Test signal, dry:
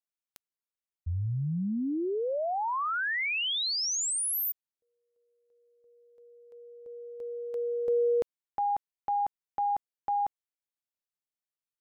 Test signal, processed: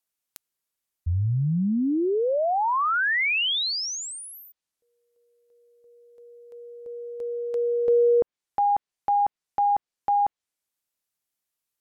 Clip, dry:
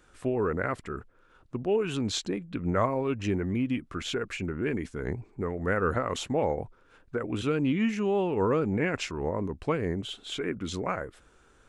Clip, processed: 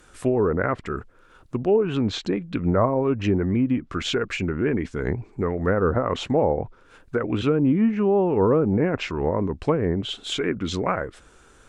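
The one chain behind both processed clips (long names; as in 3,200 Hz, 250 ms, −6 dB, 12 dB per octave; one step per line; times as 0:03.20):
treble cut that deepens with the level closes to 1,000 Hz, closed at −23 dBFS
high-shelf EQ 7,100 Hz +7.5 dB
level +7 dB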